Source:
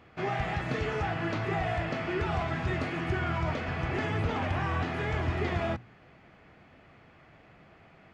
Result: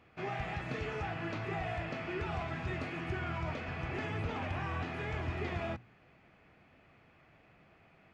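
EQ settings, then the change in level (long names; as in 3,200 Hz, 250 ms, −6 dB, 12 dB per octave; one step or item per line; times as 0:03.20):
parametric band 2,500 Hz +5 dB 0.21 octaves
−7.0 dB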